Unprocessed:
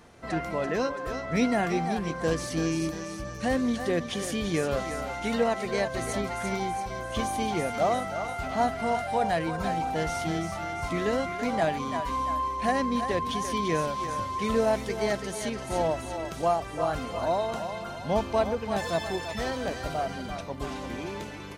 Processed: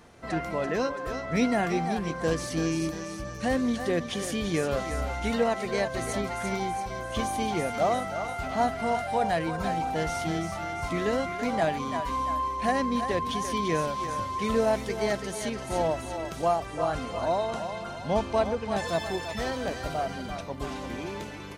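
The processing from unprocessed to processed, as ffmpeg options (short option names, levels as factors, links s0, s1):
-filter_complex "[0:a]asettb=1/sr,asplit=3[s0][s1][s2];[s0]atrim=end=4.894[s3];[s1]atrim=start=4.89:end=5.31,asetpts=PTS-STARTPTS,afade=t=in:d=0.004:c=qsin,afade=t=out:st=0.416:d=0.004:c=qsin,equalizer=f=61:w=1.4:g=11.5[s4];[s2]atrim=start=5.306[s5];[s3][s4]acrossfade=d=0.004:c1=hsin:c2=qsin[s6];[s6][s5]acrossfade=d=0.004:c1=qsin:c2=hsin,asettb=1/sr,asplit=3[s7][s8][s9];[s7]atrim=end=16.664[s10];[s8]atrim=start=16.66:end=18.88,asetpts=PTS-STARTPTS,afade=t=in:d=0.004:c=qsin,afade=t=out:st=2.216:d=0.004:c=qsin,lowpass=f=11000:w=0.5412,lowpass=f=11000:w=1.3066[s11];[s9]atrim=start=18.876[s12];[s10][s11]acrossfade=d=0.004:c1=hsin:c2=qsin[s13];[s13][s12]acrossfade=d=0.004:c1=qsin:c2=hsin"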